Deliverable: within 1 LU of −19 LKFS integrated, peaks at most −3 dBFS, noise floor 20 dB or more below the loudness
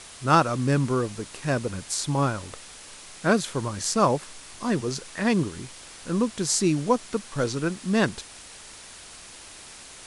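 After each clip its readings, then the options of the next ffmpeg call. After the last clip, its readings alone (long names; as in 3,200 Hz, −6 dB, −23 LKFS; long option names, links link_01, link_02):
background noise floor −45 dBFS; target noise floor −46 dBFS; integrated loudness −25.5 LKFS; sample peak −4.5 dBFS; target loudness −19.0 LKFS
→ -af "afftdn=noise_reduction=6:noise_floor=-45"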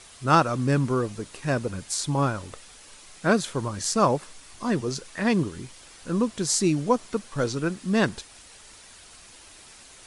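background noise floor −49 dBFS; integrated loudness −25.5 LKFS; sample peak −5.0 dBFS; target loudness −19.0 LKFS
→ -af "volume=6.5dB,alimiter=limit=-3dB:level=0:latency=1"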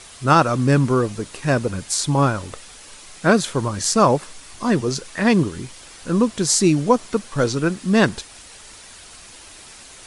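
integrated loudness −19.5 LKFS; sample peak −3.0 dBFS; background noise floor −43 dBFS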